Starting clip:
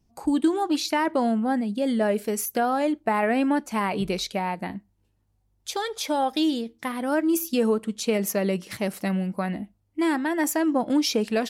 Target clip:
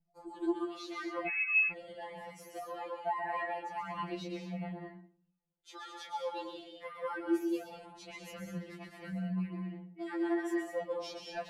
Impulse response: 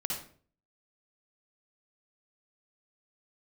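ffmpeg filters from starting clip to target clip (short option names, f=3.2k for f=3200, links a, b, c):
-filter_complex "[0:a]asplit=2[a][b];[1:a]atrim=start_sample=2205,adelay=131[c];[b][c]afir=irnorm=-1:irlink=0,volume=-5dB[d];[a][d]amix=inputs=2:normalize=0,flanger=delay=1.4:depth=1.7:regen=-35:speed=1.3:shape=sinusoidal,aemphasis=mode=reproduction:type=75fm,asettb=1/sr,asplit=3[e][f][g];[e]atrim=end=1.274[h];[f]atrim=start=1.27:end=1.72,asetpts=PTS-STARTPTS,afade=t=in:d=0.004:c=qsin,afade=t=out:st=0.446:d=0.004:c=qsin,lowpass=f=2.4k:t=q:w=0.5098,lowpass=f=2.4k:t=q:w=0.6013,lowpass=f=2.4k:t=q:w=0.9,lowpass=f=2.4k:t=q:w=2.563,afreqshift=-2800[i];[g]atrim=start=1.716[j];[h][i]acrossfade=d=0.004:c1=hsin:c2=qsin[k];[k][j]acrossfade=d=0.004:c1=qsin:c2=hsin,afftfilt=real='re*2.83*eq(mod(b,8),0)':imag='im*2.83*eq(mod(b,8),0)':win_size=2048:overlap=0.75,volume=-8dB"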